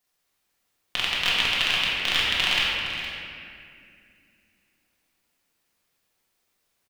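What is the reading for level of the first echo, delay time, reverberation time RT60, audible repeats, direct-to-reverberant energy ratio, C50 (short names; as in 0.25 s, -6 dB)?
-11.5 dB, 0.465 s, 2.4 s, 1, -7.5 dB, -3.0 dB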